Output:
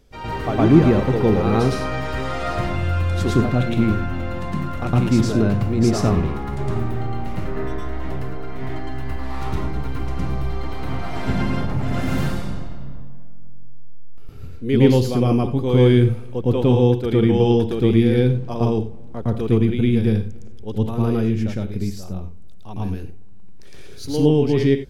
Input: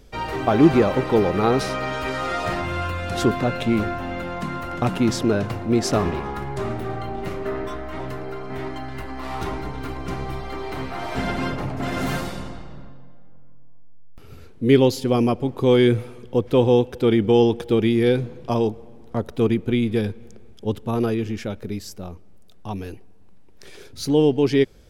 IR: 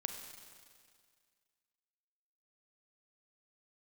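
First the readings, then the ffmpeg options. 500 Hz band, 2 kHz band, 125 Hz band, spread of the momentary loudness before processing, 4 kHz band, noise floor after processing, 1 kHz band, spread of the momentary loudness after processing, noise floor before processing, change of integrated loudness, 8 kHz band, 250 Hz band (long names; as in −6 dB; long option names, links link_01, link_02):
−0.5 dB, −1.5 dB, +7.0 dB, 15 LU, −1.5 dB, −30 dBFS, −1.5 dB, 15 LU, −42 dBFS, +2.0 dB, −2.0 dB, +2.5 dB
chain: -filter_complex "[0:a]asplit=2[link_01][link_02];[link_02]bass=frequency=250:gain=11,treble=frequency=4000:gain=-1[link_03];[1:a]atrim=start_sample=2205,atrim=end_sample=4410,adelay=111[link_04];[link_03][link_04]afir=irnorm=-1:irlink=0,volume=4.5dB[link_05];[link_01][link_05]amix=inputs=2:normalize=0,volume=-6.5dB"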